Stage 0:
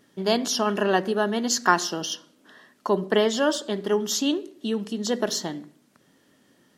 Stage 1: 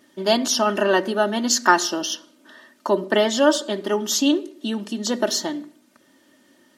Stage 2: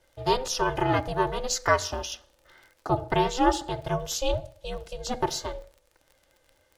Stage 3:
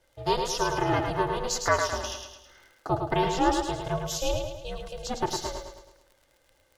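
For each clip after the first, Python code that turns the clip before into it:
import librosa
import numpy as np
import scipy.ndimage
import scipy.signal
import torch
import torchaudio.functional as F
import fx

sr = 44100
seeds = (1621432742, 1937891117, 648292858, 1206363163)

y1 = fx.highpass(x, sr, hz=170.0, slope=6)
y1 = y1 + 0.64 * np.pad(y1, (int(3.3 * sr / 1000.0), 0))[:len(y1)]
y1 = y1 * librosa.db_to_amplitude(3.0)
y2 = fx.dmg_crackle(y1, sr, seeds[0], per_s=50.0, level_db=-35.0)
y2 = fx.dynamic_eq(y2, sr, hz=600.0, q=0.95, threshold_db=-31.0, ratio=4.0, max_db=5)
y2 = y2 * np.sin(2.0 * np.pi * 260.0 * np.arange(len(y2)) / sr)
y2 = y2 * librosa.db_to_amplitude(-6.0)
y3 = fx.echo_feedback(y2, sr, ms=107, feedback_pct=48, wet_db=-5.5)
y3 = y3 * librosa.db_to_amplitude(-2.0)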